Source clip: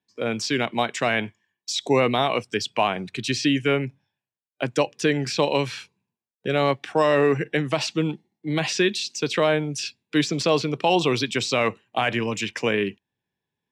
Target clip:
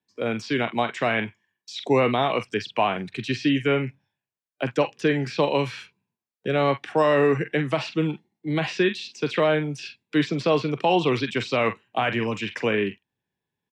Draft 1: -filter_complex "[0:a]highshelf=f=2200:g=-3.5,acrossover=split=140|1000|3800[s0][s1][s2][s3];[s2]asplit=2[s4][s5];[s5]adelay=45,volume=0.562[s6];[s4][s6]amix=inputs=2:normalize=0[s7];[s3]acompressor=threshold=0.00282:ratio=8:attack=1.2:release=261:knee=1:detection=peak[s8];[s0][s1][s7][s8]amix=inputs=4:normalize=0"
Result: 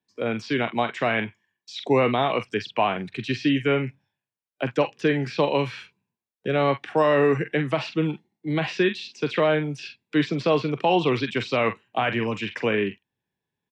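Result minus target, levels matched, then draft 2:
compression: peak gain reduction +7 dB
-filter_complex "[0:a]highshelf=f=2200:g=-3.5,acrossover=split=140|1000|3800[s0][s1][s2][s3];[s2]asplit=2[s4][s5];[s5]adelay=45,volume=0.562[s6];[s4][s6]amix=inputs=2:normalize=0[s7];[s3]acompressor=threshold=0.00708:ratio=8:attack=1.2:release=261:knee=1:detection=peak[s8];[s0][s1][s7][s8]amix=inputs=4:normalize=0"

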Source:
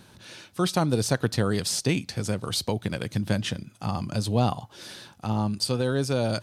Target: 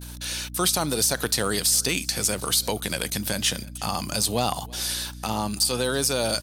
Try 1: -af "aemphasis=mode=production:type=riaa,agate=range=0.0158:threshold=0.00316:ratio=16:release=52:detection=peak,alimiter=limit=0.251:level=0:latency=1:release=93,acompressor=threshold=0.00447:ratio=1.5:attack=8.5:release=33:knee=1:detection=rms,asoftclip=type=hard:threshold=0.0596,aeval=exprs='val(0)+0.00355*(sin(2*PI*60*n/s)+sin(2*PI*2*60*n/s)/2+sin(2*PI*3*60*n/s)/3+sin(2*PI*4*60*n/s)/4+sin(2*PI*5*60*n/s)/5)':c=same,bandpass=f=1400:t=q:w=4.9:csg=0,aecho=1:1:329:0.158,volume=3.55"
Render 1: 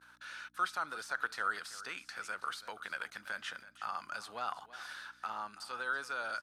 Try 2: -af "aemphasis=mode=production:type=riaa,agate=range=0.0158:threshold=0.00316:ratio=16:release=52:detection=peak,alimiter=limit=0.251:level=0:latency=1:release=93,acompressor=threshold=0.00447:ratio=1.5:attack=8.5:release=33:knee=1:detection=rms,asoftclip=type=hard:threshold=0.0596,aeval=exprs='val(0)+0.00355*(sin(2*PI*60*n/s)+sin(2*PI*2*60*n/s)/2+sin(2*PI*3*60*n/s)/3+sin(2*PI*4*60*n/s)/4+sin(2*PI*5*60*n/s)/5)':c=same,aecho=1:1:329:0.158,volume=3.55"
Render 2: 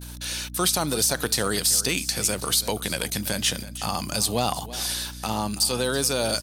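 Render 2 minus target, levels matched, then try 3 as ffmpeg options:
echo-to-direct +8.5 dB
-af "aemphasis=mode=production:type=riaa,agate=range=0.0158:threshold=0.00316:ratio=16:release=52:detection=peak,alimiter=limit=0.251:level=0:latency=1:release=93,acompressor=threshold=0.00447:ratio=1.5:attack=8.5:release=33:knee=1:detection=rms,asoftclip=type=hard:threshold=0.0596,aeval=exprs='val(0)+0.00355*(sin(2*PI*60*n/s)+sin(2*PI*2*60*n/s)/2+sin(2*PI*3*60*n/s)/3+sin(2*PI*4*60*n/s)/4+sin(2*PI*5*60*n/s)/5)':c=same,aecho=1:1:329:0.0596,volume=3.55"

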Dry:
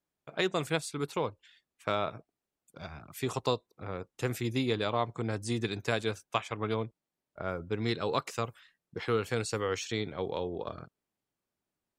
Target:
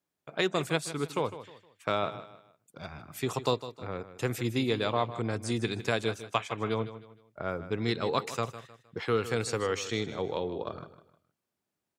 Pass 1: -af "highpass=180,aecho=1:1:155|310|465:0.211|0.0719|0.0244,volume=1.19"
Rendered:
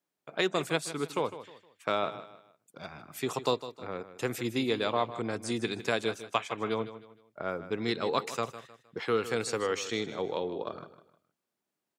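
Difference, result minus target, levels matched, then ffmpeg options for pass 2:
125 Hz band -6.0 dB
-af "highpass=79,aecho=1:1:155|310|465:0.211|0.0719|0.0244,volume=1.19"

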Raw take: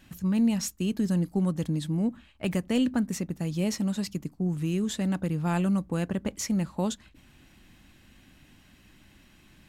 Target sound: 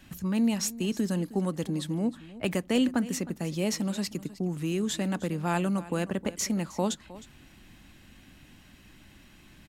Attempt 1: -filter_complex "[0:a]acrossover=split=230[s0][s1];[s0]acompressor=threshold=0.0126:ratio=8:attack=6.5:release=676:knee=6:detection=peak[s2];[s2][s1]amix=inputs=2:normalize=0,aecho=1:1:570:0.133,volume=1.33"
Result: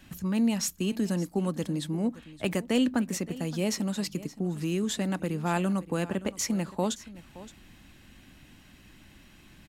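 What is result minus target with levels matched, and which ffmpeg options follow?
echo 258 ms late
-filter_complex "[0:a]acrossover=split=230[s0][s1];[s0]acompressor=threshold=0.0126:ratio=8:attack=6.5:release=676:knee=6:detection=peak[s2];[s2][s1]amix=inputs=2:normalize=0,aecho=1:1:312:0.133,volume=1.33"

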